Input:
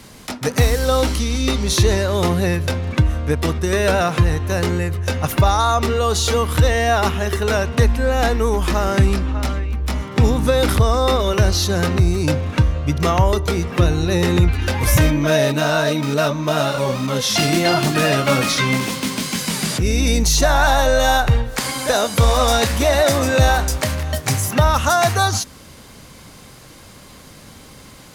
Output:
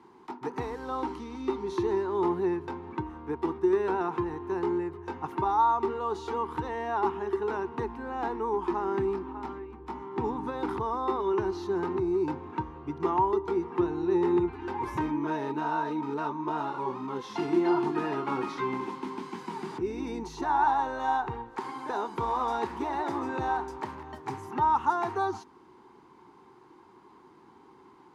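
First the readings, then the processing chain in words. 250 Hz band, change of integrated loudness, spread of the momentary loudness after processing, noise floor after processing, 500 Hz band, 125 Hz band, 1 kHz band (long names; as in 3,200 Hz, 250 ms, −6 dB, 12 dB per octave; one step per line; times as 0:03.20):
−9.5 dB, −12.5 dB, 12 LU, −56 dBFS, −11.0 dB, −25.0 dB, −7.0 dB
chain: pair of resonant band-passes 580 Hz, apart 1.3 octaves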